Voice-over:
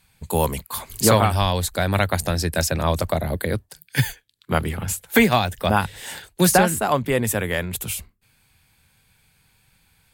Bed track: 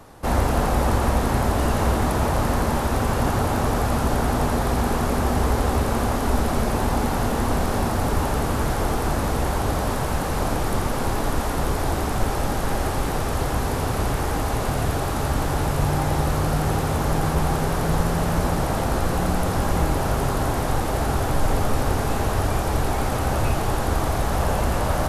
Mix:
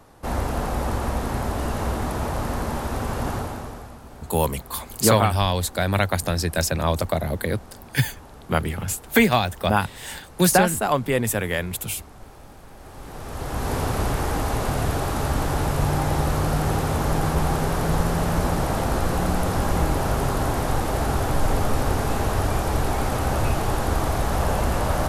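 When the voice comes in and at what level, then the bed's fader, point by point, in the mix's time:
4.00 s, -1.0 dB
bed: 3.34 s -5 dB
4.01 s -21.5 dB
12.74 s -21.5 dB
13.73 s -0.5 dB

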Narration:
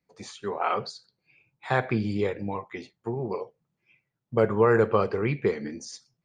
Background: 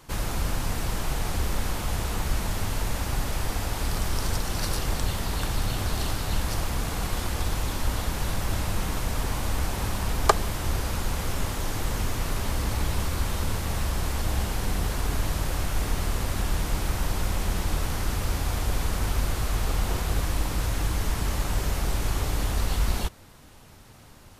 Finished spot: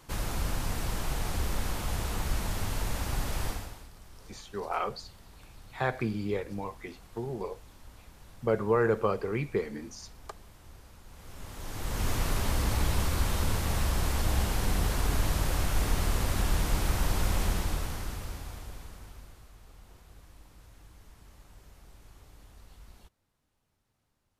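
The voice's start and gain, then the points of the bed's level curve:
4.10 s, -5.0 dB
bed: 3.48 s -4 dB
3.91 s -24.5 dB
11.04 s -24.5 dB
12.1 s -1 dB
17.44 s -1 dB
19.55 s -27.5 dB

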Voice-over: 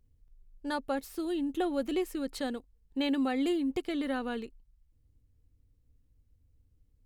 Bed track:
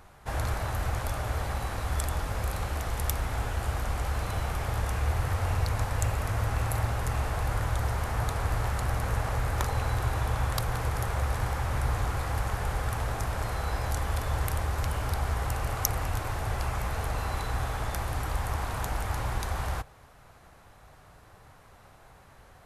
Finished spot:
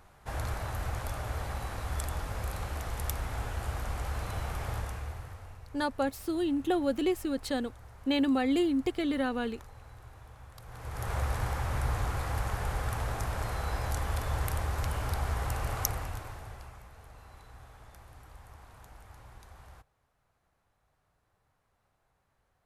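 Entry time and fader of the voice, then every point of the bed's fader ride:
5.10 s, +2.5 dB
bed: 4.74 s -4.5 dB
5.61 s -22.5 dB
10.55 s -22.5 dB
11.12 s -2.5 dB
15.82 s -2.5 dB
16.9 s -21 dB

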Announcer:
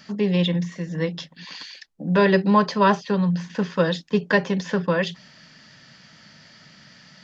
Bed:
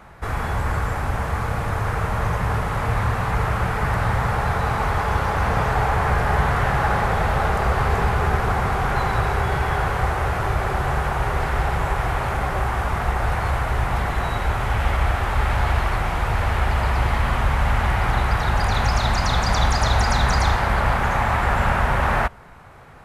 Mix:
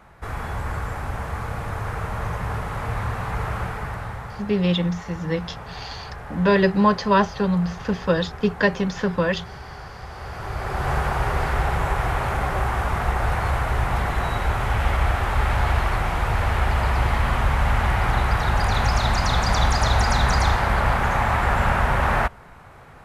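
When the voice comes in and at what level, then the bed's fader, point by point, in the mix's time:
4.30 s, 0.0 dB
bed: 3.6 s -5 dB
4.52 s -16.5 dB
10.03 s -16.5 dB
10.92 s -0.5 dB

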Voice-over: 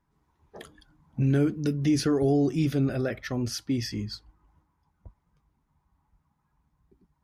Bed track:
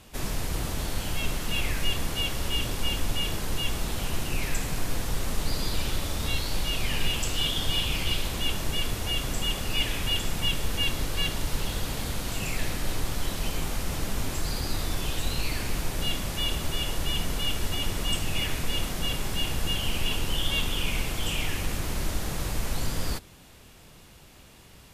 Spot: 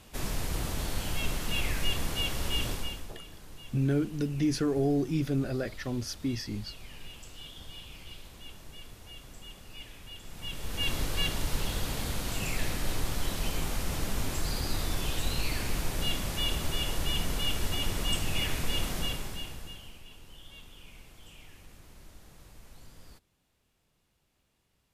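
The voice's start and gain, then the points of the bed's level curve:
2.55 s, -4.0 dB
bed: 2.71 s -2.5 dB
3.17 s -19 dB
10.18 s -19 dB
10.93 s -2 dB
18.99 s -2 dB
20.04 s -23 dB

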